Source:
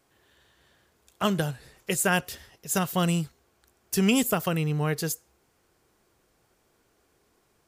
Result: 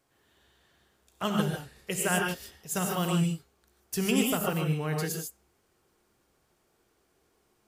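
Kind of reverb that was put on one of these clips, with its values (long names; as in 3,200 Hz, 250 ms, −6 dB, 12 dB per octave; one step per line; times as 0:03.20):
reverb whose tail is shaped and stops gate 170 ms rising, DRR 1 dB
level −5.5 dB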